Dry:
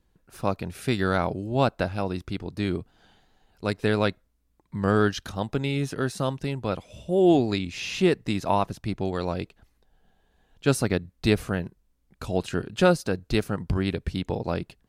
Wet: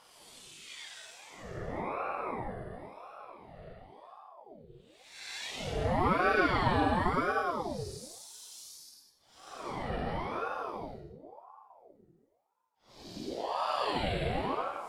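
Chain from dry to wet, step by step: tape stop on the ending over 1.60 s; Paulstretch 15×, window 0.05 s, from 12.43 s; ring modulator with a swept carrier 610 Hz, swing 60%, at 0.95 Hz; trim -8.5 dB

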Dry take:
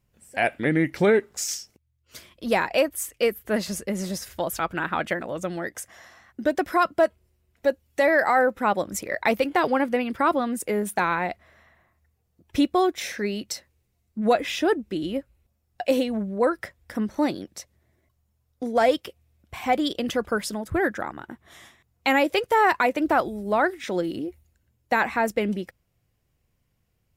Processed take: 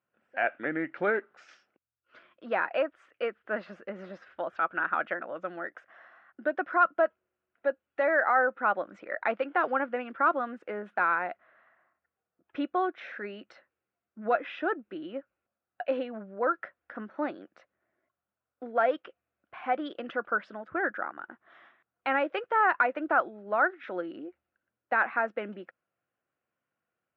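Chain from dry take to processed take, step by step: cabinet simulation 400–2400 Hz, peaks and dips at 430 Hz -5 dB, 920 Hz -4 dB, 1.4 kHz +8 dB, 2.1 kHz -6 dB; trim -4 dB

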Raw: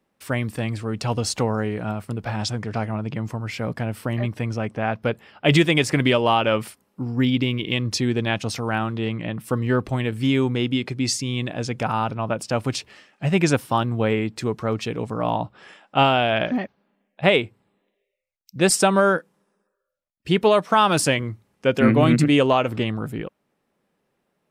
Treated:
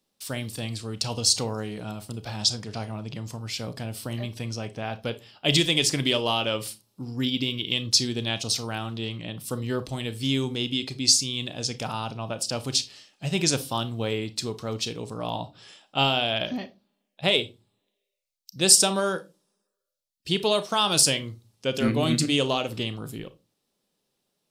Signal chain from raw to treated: resonant high shelf 2.8 kHz +12 dB, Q 1.5; on a send: reverberation RT60 0.25 s, pre-delay 29 ms, DRR 12 dB; on the sum: trim -7.5 dB

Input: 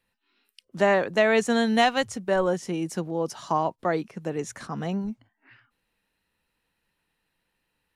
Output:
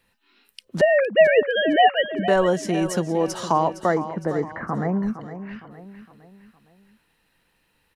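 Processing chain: 0.81–2.28 s: formants replaced by sine waves; in parallel at +2.5 dB: compression, threshold -33 dBFS, peak gain reduction 18.5 dB; 3.82–5.03 s: on the sum: elliptic low-pass 2 kHz, stop band 40 dB; feedback delay 461 ms, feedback 44%, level -12 dB; trim +2 dB

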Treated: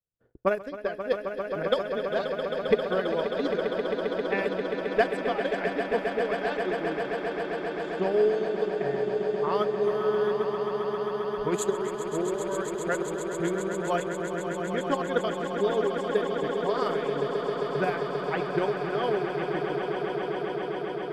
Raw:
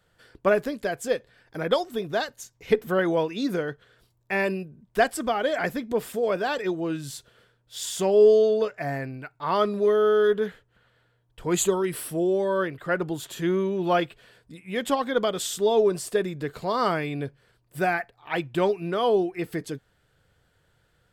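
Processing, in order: gate -55 dBFS, range -21 dB; level-controlled noise filter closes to 560 Hz, open at -19 dBFS; transient shaper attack +7 dB, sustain -11 dB; on a send: echo with a slow build-up 133 ms, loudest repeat 8, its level -9.5 dB; on the sum: trim -8.5 dB

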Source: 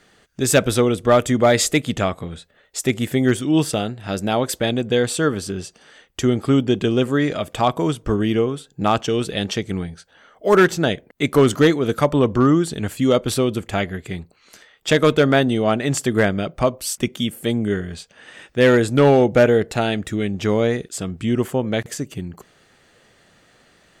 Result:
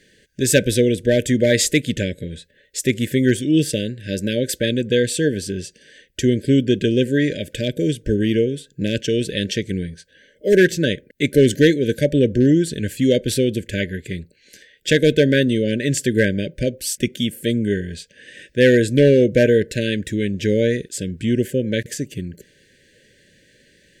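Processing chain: brick-wall FIR band-stop 610–1500 Hz; trim +1 dB

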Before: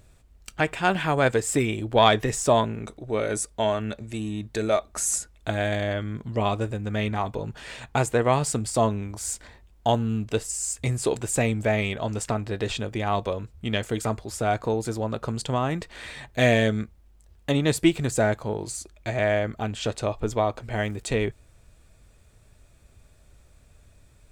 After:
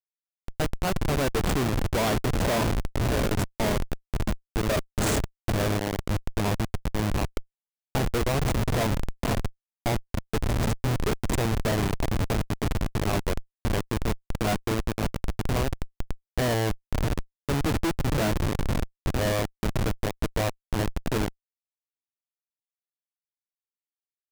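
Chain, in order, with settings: echo that smears into a reverb 555 ms, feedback 47%, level -8 dB; Schmitt trigger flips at -21 dBFS; trim +2 dB

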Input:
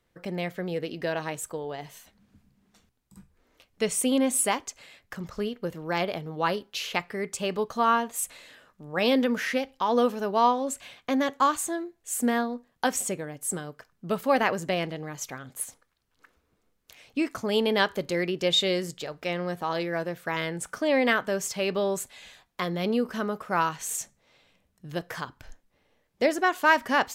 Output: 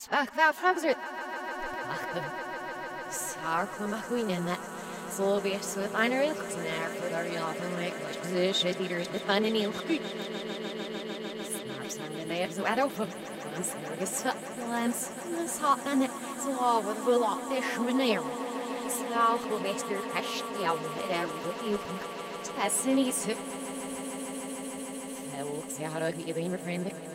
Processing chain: reverse the whole clip; flange 0.11 Hz, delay 4.5 ms, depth 6.7 ms, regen +42%; echo with a slow build-up 150 ms, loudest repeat 8, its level -17 dB

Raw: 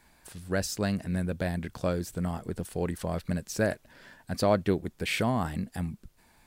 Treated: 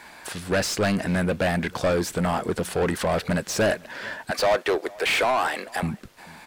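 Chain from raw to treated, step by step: 4.31–5.83 s: high-pass 400 Hz 24 dB/octave; overdrive pedal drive 27 dB, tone 2.9 kHz, clips at -13 dBFS; echo from a far wall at 76 m, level -23 dB

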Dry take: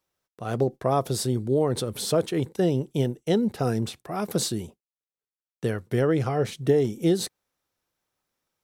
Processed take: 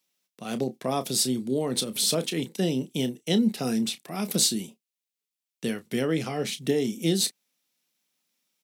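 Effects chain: high-pass 210 Hz 24 dB/octave; high-order bell 720 Hz -12 dB 2.8 oct; doubling 31 ms -12 dB; trim +6.5 dB

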